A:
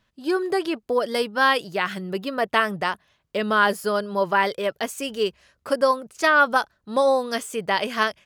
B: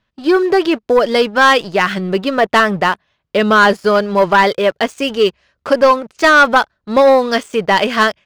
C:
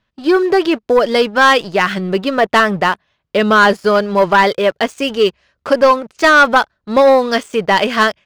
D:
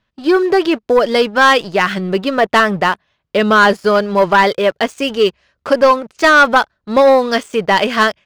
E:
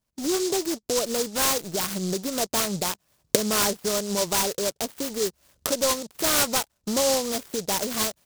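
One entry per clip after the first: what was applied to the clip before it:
LPF 4900 Hz 12 dB/oct; sample leveller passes 2; gain +4 dB
nothing audible
short-mantissa float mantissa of 8-bit
recorder AGC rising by 59 dB/s; noise-modulated delay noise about 5600 Hz, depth 0.17 ms; gain -13.5 dB

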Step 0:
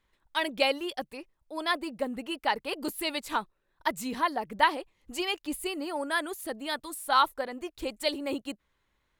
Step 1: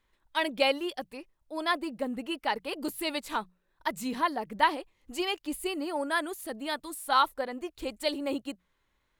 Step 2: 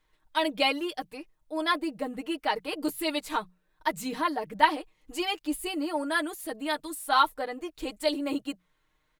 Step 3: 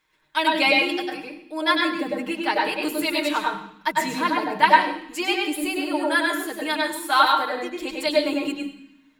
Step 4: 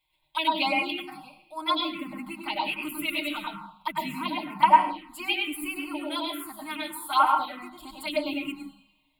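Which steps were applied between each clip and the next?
notches 60/120/180 Hz; harmonic-percussive split harmonic +4 dB; gain -2.5 dB
comb 6.5 ms, depth 72%
reverb RT60 0.65 s, pre-delay 97 ms, DRR -0.5 dB; gain +4 dB
envelope phaser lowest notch 220 Hz, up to 3900 Hz, full sweep at -14 dBFS; fixed phaser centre 1700 Hz, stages 6

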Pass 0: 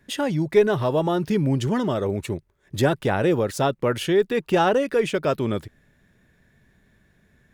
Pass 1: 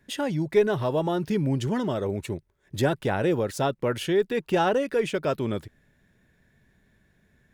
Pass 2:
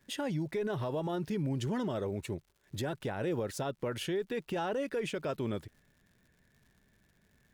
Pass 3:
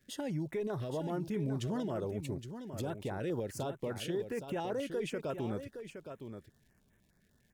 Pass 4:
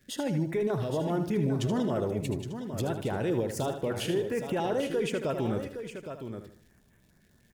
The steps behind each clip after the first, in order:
notch 1200 Hz, Q 18; gain -3.5 dB
limiter -21 dBFS, peak gain reduction 11 dB; crackle 150/s -50 dBFS; gain -5.5 dB
on a send: echo 0.816 s -9 dB; on the sum: stepped notch 10 Hz 940–4600 Hz; gain -2 dB
feedback echo 77 ms, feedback 36%, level -9 dB; gain +6.5 dB

